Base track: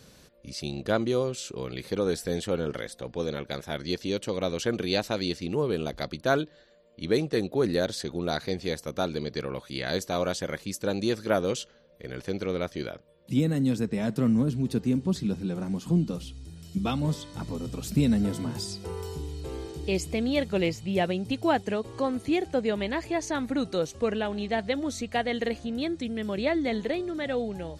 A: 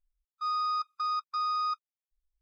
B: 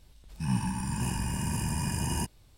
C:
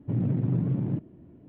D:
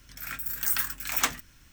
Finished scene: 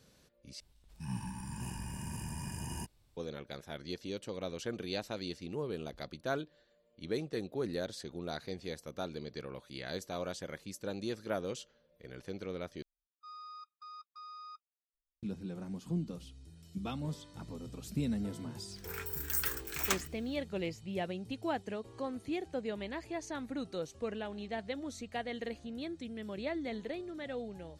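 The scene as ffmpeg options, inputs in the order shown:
-filter_complex "[0:a]volume=-11dB[a];[1:a]equalizer=f=1.7k:t=o:w=0.53:g=-7.5[b];[a]asplit=3[c][d][e];[c]atrim=end=0.604[f];[2:a]atrim=end=2.57,asetpts=PTS-STARTPTS,volume=-10.5dB[g];[d]atrim=start=3.166:end=12.824[h];[b]atrim=end=2.41,asetpts=PTS-STARTPTS,volume=-17dB[i];[e]atrim=start=15.226[j];[4:a]atrim=end=1.72,asetpts=PTS-STARTPTS,volume=-7dB,afade=t=in:d=0.05,afade=t=out:st=1.67:d=0.05,adelay=18670[k];[f][g]acrossfade=d=0.004:c1=hsin:c2=hsin[l];[l][h]acrossfade=d=0.004:c1=hsin:c2=hsin[m];[m][i]acrossfade=d=0.004:c1=hsin:c2=hsin[n];[n][j]acrossfade=d=0.004:c1=hsin:c2=hsin[o];[o][k]amix=inputs=2:normalize=0"

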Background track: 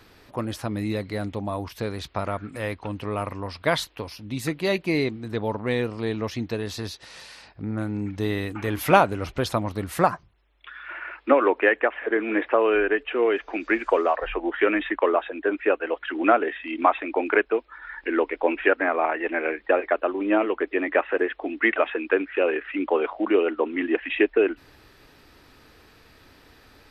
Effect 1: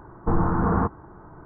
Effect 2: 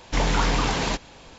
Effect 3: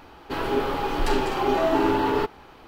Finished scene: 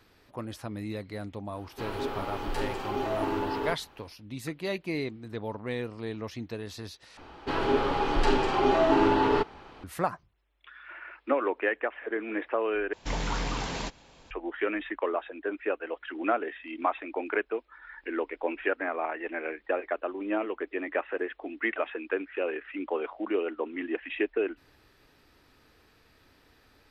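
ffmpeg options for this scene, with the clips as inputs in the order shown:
-filter_complex "[3:a]asplit=2[a][b];[0:a]volume=-8.5dB[c];[b]lowpass=6.4k[d];[c]asplit=3[e][f][g];[e]atrim=end=7.174[h];[d]atrim=end=2.67,asetpts=PTS-STARTPTS,volume=-1dB[i];[f]atrim=start=9.836:end=12.934[j];[2:a]atrim=end=1.38,asetpts=PTS-STARTPTS,volume=-9dB[k];[g]atrim=start=14.306[l];[a]atrim=end=2.67,asetpts=PTS-STARTPTS,volume=-9dB,afade=t=in:d=0.1,afade=t=out:st=2.57:d=0.1,adelay=1480[m];[h][i]acrossfade=d=0.004:c1=hsin:c2=hsin[n];[n][j]acrossfade=d=0.004:c1=hsin:c2=hsin[o];[o][k]acrossfade=d=0.004:c1=hsin:c2=hsin[p];[p][l]acrossfade=d=0.004:c1=hsin:c2=hsin[q];[q][m]amix=inputs=2:normalize=0"

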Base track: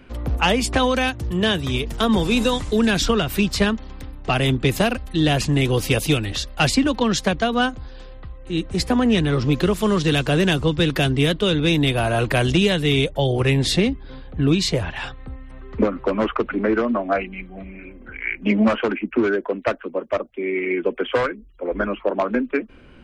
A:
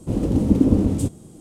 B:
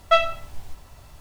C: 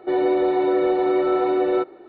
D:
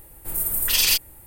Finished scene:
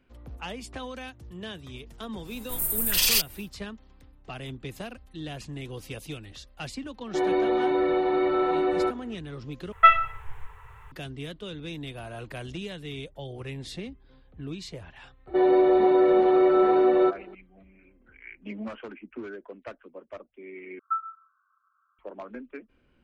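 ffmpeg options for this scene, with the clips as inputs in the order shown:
-filter_complex "[3:a]asplit=2[a][b];[2:a]asplit=2[c][d];[0:a]volume=-19dB[e];[a]equalizer=f=500:t=o:w=1.1:g=-6.5[f];[c]firequalizer=gain_entry='entry(130,0);entry(190,-20);entry(270,-30);entry(440,7);entry(620,-16);entry(880,7);entry(1900,8);entry(3100,-3);entry(4600,-24);entry(7400,-12)':delay=0.05:min_phase=1[g];[b]aecho=1:1:5.2:0.38[h];[d]asuperpass=centerf=1300:order=20:qfactor=2.6[i];[e]asplit=3[j][k][l];[j]atrim=end=9.724[m];[g]atrim=end=1.2,asetpts=PTS-STARTPTS,volume=-2dB[n];[k]atrim=start=10.916:end=20.794[o];[i]atrim=end=1.2,asetpts=PTS-STARTPTS,volume=-7.5dB[p];[l]atrim=start=21.986[q];[4:a]atrim=end=1.26,asetpts=PTS-STARTPTS,volume=-3dB,afade=t=in:d=0.1,afade=t=out:st=1.16:d=0.1,adelay=2240[r];[f]atrim=end=2.08,asetpts=PTS-STARTPTS,volume=-0.5dB,afade=t=in:d=0.004:c=hsin,afade=t=out:st=2.076:d=0.004:c=hsin,adelay=7070[s];[h]atrim=end=2.08,asetpts=PTS-STARTPTS,volume=-2dB,afade=t=in:d=0.004:c=hsin,afade=t=out:st=2.076:d=0.004:c=hsin,adelay=15270[t];[m][n]acrossfade=d=0.004:c1=hsin:c2=hsin[u];[u][o]acrossfade=d=0.004:c1=hsin:c2=hsin[v];[v][p]acrossfade=d=0.004:c1=hsin:c2=hsin[w];[w][q]acrossfade=d=0.004:c1=hsin:c2=hsin[x];[x][r][s][t]amix=inputs=4:normalize=0"

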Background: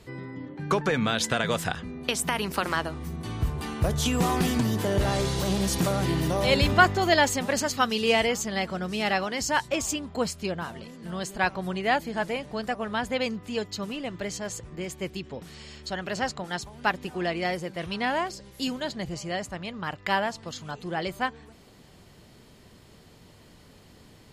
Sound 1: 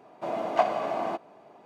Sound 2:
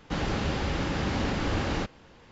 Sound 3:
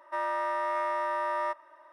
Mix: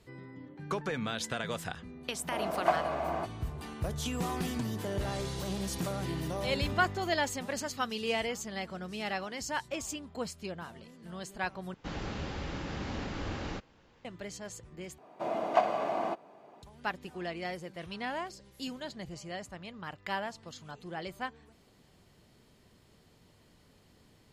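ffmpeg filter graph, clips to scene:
-filter_complex "[1:a]asplit=2[a][b];[0:a]volume=-9.5dB[c];[a]equalizer=f=1.5k:t=o:w=0.77:g=4[d];[c]asplit=3[e][f][g];[e]atrim=end=11.744[h];[2:a]atrim=end=2.31,asetpts=PTS-STARTPTS,volume=-9dB[i];[f]atrim=start=14.046:end=14.984[j];[b]atrim=end=1.65,asetpts=PTS-STARTPTS,volume=-2.5dB[k];[g]atrim=start=16.626[l];[d]atrim=end=1.65,asetpts=PTS-STARTPTS,volume=-4.5dB,afade=t=in:d=0.004:c=hsin,afade=t=out:st=1.646:d=0.004:c=hsin,adelay=2090[m];[h][i]acrossfade=d=0.004:c1=hsin:c2=hsin[n];[n][j]acrossfade=d=0.004:c1=hsin:c2=hsin[o];[o][k]acrossfade=d=0.004:c1=hsin:c2=hsin[p];[p][l]acrossfade=d=0.004:c1=hsin:c2=hsin[q];[q][m]amix=inputs=2:normalize=0"

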